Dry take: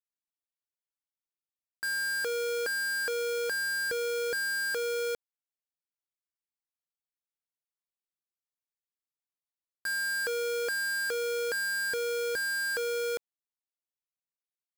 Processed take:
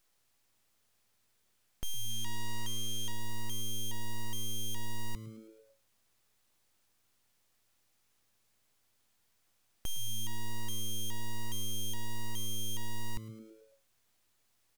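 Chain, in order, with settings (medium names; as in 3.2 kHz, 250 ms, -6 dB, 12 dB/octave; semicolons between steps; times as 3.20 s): 2.10–3.12 s: treble shelf 7.3 kHz -11.5 dB; overdrive pedal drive 31 dB, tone 5.6 kHz, clips at -31 dBFS; full-wave rectifier; frequency-shifting echo 108 ms, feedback 56%, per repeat +110 Hz, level -17.5 dB; trim +2 dB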